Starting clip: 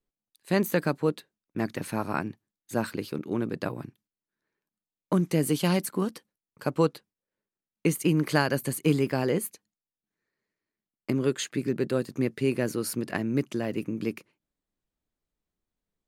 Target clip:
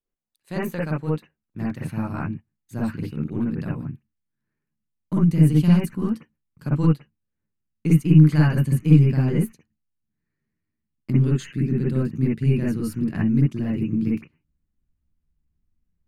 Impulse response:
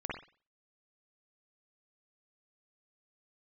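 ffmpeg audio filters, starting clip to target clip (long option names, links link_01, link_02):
-filter_complex "[0:a]aeval=exprs='0.355*(cos(1*acos(clip(val(0)/0.355,-1,1)))-cos(1*PI/2))+0.00794*(cos(4*acos(clip(val(0)/0.355,-1,1)))-cos(4*PI/2))':channel_layout=same,asubboost=boost=10.5:cutoff=160[link_01];[1:a]atrim=start_sample=2205,atrim=end_sample=3087[link_02];[link_01][link_02]afir=irnorm=-1:irlink=0,volume=-4dB"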